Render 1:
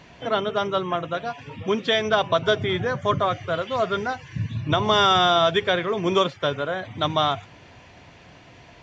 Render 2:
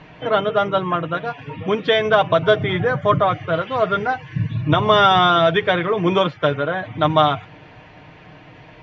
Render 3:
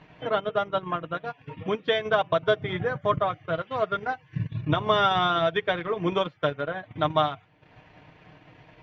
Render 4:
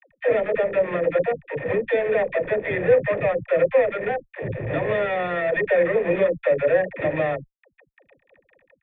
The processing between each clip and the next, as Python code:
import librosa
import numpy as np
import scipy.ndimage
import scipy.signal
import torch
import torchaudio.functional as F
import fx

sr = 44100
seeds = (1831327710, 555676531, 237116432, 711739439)

y1 = scipy.signal.sosfilt(scipy.signal.butter(2, 2800.0, 'lowpass', fs=sr, output='sos'), x)
y1 = y1 + 0.51 * np.pad(y1, (int(6.5 * sr / 1000.0), 0))[:len(y1)]
y1 = F.gain(torch.from_numpy(y1), 4.5).numpy()
y2 = fx.transient(y1, sr, attack_db=2, sustain_db=-11)
y2 = F.gain(torch.from_numpy(y2), -8.5).numpy()
y3 = fx.fuzz(y2, sr, gain_db=40.0, gate_db=-43.0)
y3 = fx.formant_cascade(y3, sr, vowel='e')
y3 = fx.dispersion(y3, sr, late='lows', ms=100.0, hz=380.0)
y3 = F.gain(torch.from_numpy(y3), 6.0).numpy()